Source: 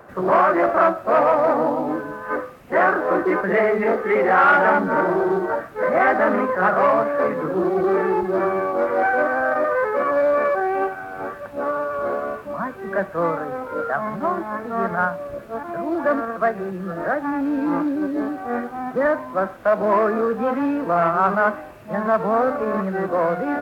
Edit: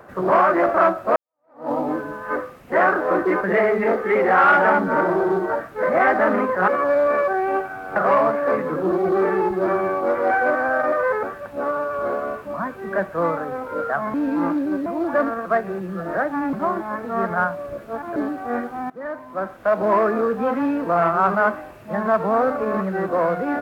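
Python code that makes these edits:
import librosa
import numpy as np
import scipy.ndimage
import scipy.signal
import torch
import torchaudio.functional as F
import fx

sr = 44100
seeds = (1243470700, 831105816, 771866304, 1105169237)

y = fx.edit(x, sr, fx.fade_in_span(start_s=1.16, length_s=0.55, curve='exp'),
    fx.move(start_s=9.95, length_s=1.28, to_s=6.68),
    fx.swap(start_s=14.14, length_s=1.63, other_s=17.44, other_length_s=0.72),
    fx.fade_in_from(start_s=18.9, length_s=0.92, floor_db=-19.5), tone=tone)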